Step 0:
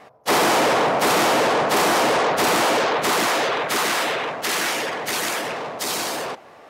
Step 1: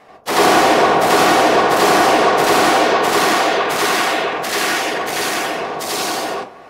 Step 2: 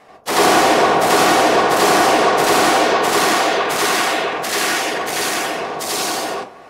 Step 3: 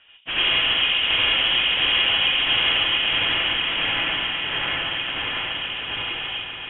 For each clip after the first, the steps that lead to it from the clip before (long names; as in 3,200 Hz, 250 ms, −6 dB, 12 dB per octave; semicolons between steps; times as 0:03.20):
convolution reverb RT60 0.35 s, pre-delay 83 ms, DRR −5 dB; level −1 dB
parametric band 8,700 Hz +3.5 dB 1.4 octaves; level −1 dB
voice inversion scrambler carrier 3,600 Hz; echo that builds up and dies away 141 ms, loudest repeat 5, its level −14 dB; level −7.5 dB